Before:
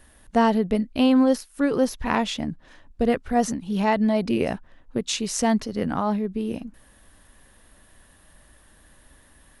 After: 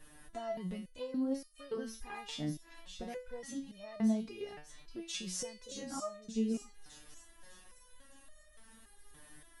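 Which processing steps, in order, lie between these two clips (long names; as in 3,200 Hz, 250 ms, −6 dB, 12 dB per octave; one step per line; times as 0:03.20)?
downward compressor 2 to 1, threshold −39 dBFS, peak gain reduction 13.5 dB
on a send: delay with a high-pass on its return 603 ms, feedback 48%, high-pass 3,400 Hz, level −4.5 dB
on the sum: step-sequenced resonator 3.5 Hz 150–610 Hz
level +8.5 dB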